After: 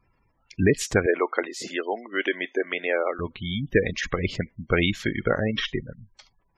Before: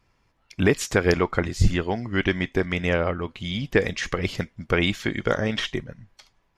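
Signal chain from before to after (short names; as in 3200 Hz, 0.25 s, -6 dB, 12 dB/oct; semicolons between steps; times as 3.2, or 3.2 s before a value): 1.06–3.19 HPF 330 Hz 24 dB/oct; spectral gate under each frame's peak -20 dB strong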